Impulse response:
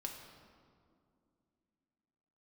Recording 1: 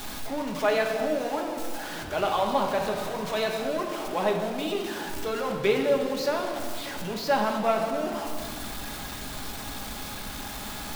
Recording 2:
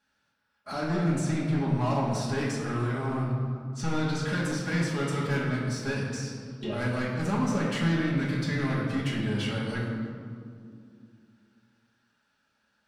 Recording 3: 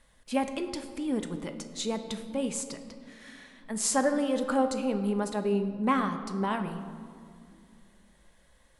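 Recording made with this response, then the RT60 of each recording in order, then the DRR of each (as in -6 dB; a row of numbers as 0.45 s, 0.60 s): 1; 2.4 s, 2.3 s, 2.5 s; 1.0 dB, -6.5 dB, 6.5 dB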